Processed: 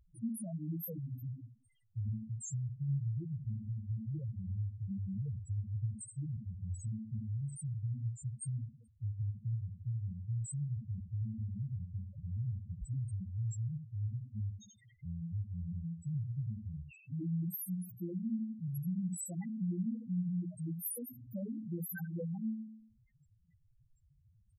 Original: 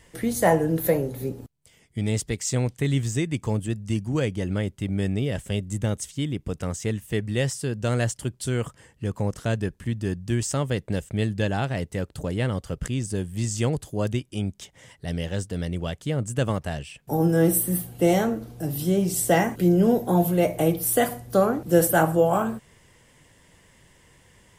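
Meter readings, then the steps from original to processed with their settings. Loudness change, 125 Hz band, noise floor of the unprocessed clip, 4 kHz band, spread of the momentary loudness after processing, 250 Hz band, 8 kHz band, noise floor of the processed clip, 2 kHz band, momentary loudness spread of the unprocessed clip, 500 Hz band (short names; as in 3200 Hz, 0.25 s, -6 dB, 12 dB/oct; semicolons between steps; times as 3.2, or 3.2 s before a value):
-14.5 dB, -10.0 dB, -59 dBFS, under -35 dB, 6 LU, -15.0 dB, -17.5 dB, -69 dBFS, under -25 dB, 10 LU, under -30 dB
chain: bell 570 Hz -10.5 dB 1.8 oct; resonator 110 Hz, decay 0.66 s, harmonics all, mix 60%; speakerphone echo 0.23 s, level -18 dB; compressor 6:1, threshold -34 dBFS, peak gain reduction 9 dB; high shelf 5400 Hz +10 dB; on a send: feedback echo 78 ms, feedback 21%, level -7 dB; on the sum: loudest bins only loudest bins 2; gain +2.5 dB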